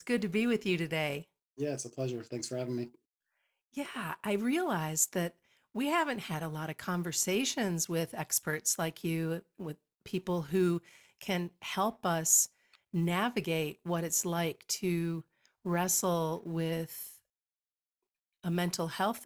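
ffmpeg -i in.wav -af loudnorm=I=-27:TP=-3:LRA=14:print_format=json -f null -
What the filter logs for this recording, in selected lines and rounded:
"input_i" : "-32.8",
"input_tp" : "-12.4",
"input_lra" : "5.8",
"input_thresh" : "-43.3",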